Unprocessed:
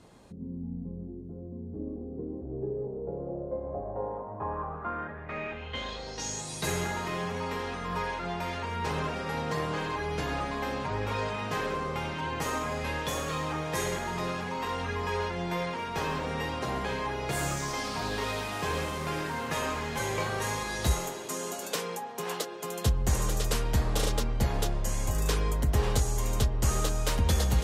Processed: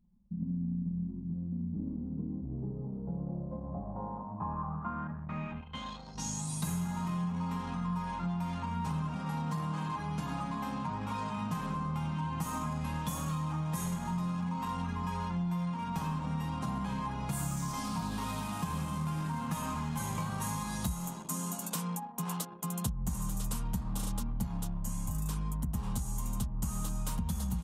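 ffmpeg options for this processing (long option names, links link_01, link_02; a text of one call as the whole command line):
ffmpeg -i in.wav -filter_complex "[0:a]asettb=1/sr,asplit=3[link_01][link_02][link_03];[link_01]atrim=end=5.614[link_04];[link_02]atrim=start=5.61:end=6.15,asetpts=PTS-STARTPTS,afade=type=in:duration=0.004:curve=qsin,afade=type=out:start_time=0.536:duration=0.004:curve=qsin,lowshelf=frequency=260:gain=-7[link_05];[link_03]atrim=start=6.146[link_06];[link_04][link_05]acrossfade=duration=0.004:curve1=hsin:curve2=qsin[link_07];[link_07][link_06]acrossfade=duration=0.004:curve1=qsin:curve2=hsin,asettb=1/sr,asplit=3[link_08][link_09][link_10];[link_08]atrim=end=9.164[link_11];[link_09]atrim=start=9.16:end=11.37,asetpts=PTS-STARTPTS,afade=type=in:duration=0.004:curve=qsin,afade=type=out:start_time=2.206:duration=0.004:curve=qsin,highpass=frequency=170:poles=1[link_12];[link_10]atrim=start=11.366[link_13];[link_11][link_12]acrossfade=duration=0.004:curve1=hsin:curve2=qsin[link_14];[link_14][link_13]acrossfade=duration=0.004:curve1=qsin:curve2=hsin,anlmdn=0.398,firequalizer=gain_entry='entry(120,0);entry(170,12);entry(400,-16);entry(970,1);entry(1800,-12);entry(2800,-7);entry(4600,-7);entry(9100,4)':delay=0.05:min_phase=1,acompressor=threshold=-31dB:ratio=6" out.wav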